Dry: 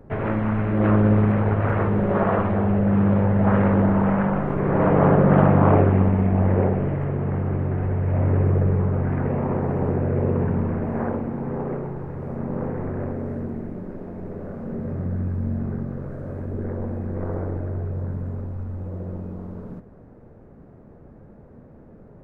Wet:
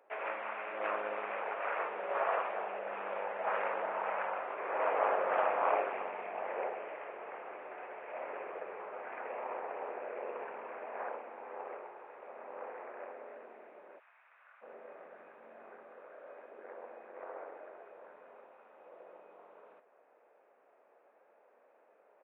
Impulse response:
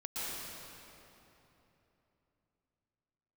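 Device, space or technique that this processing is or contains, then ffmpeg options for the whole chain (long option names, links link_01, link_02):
musical greeting card: -filter_complex "[0:a]asplit=3[link_01][link_02][link_03];[link_01]afade=type=out:start_time=13.98:duration=0.02[link_04];[link_02]highpass=frequency=1200:width=0.5412,highpass=frequency=1200:width=1.3066,afade=type=in:start_time=13.98:duration=0.02,afade=type=out:start_time=14.61:duration=0.02[link_05];[link_03]afade=type=in:start_time=14.61:duration=0.02[link_06];[link_04][link_05][link_06]amix=inputs=3:normalize=0,aresample=8000,aresample=44100,highpass=frequency=570:width=0.5412,highpass=frequency=570:width=1.3066,equalizer=frequency=2500:width_type=o:width=0.41:gain=9,volume=-8dB"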